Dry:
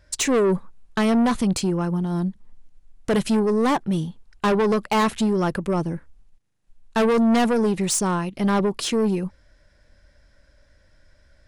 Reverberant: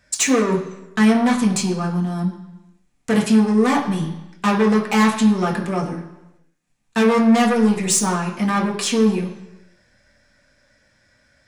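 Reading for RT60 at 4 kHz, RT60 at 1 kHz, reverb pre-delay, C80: 0.95 s, 1.0 s, 3 ms, 11.0 dB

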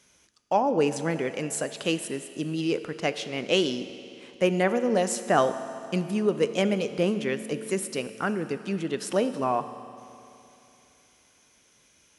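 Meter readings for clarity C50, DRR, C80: 11.5 dB, 10.5 dB, 12.0 dB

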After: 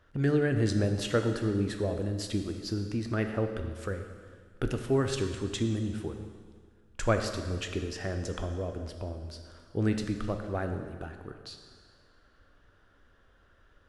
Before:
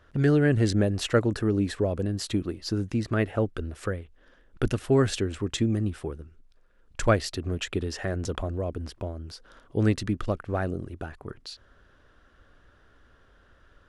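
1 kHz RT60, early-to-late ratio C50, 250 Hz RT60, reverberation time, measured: 1.8 s, 7.0 dB, 1.8 s, 1.8 s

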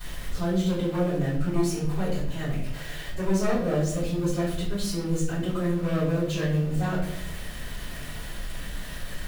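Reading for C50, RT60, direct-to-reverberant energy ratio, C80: 3.5 dB, 0.70 s, −12.0 dB, 7.0 dB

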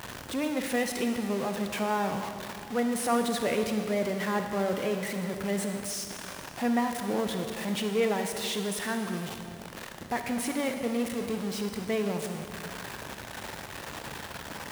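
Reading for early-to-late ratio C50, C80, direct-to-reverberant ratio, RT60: 6.0 dB, 6.5 dB, 5.5 dB, 2.4 s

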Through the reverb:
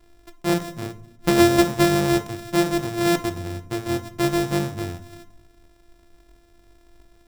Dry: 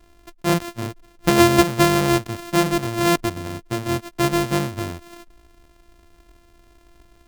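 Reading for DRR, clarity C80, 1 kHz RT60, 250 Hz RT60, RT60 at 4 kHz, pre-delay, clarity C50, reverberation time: 9.0 dB, 20.5 dB, 0.60 s, 1.1 s, 0.45 s, 6 ms, 16.5 dB, 0.70 s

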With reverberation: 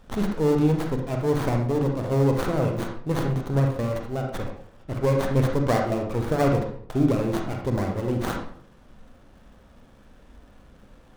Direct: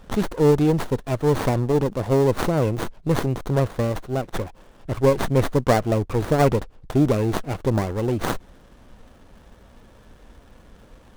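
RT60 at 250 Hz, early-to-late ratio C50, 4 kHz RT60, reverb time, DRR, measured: 0.65 s, 4.5 dB, 0.40 s, 0.60 s, 1.5 dB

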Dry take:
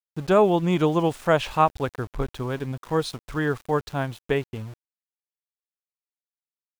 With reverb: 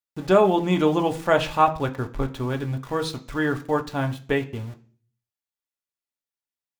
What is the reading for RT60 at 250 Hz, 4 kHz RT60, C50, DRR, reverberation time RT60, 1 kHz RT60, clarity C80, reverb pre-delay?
0.60 s, 0.50 s, 16.0 dB, 4.0 dB, 0.45 s, 0.40 s, 20.0 dB, 3 ms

